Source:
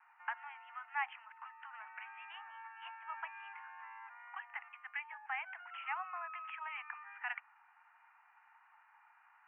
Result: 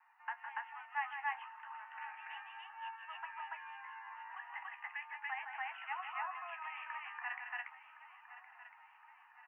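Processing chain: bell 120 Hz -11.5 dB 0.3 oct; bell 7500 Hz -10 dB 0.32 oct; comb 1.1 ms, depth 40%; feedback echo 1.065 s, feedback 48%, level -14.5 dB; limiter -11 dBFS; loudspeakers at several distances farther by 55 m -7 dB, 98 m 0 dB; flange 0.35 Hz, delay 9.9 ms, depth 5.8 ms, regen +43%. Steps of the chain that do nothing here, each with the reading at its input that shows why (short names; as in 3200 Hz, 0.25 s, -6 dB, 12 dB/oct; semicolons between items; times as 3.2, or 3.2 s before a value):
bell 120 Hz: input band starts at 600 Hz; bell 7500 Hz: input band ends at 3200 Hz; limiter -11 dBFS: input peak -24.5 dBFS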